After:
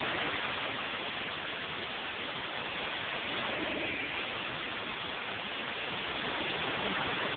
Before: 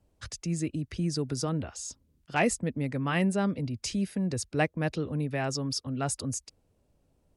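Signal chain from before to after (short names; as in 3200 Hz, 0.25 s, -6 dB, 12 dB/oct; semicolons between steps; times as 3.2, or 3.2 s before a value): per-bin compression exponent 0.6; Paulstretch 33×, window 0.10 s, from 4.79; resonant high shelf 1700 Hz +8 dB, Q 3; comb 3 ms, depth 76%; wrapped overs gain 25.5 dB; gain +5.5 dB; AMR-NB 5.15 kbps 8000 Hz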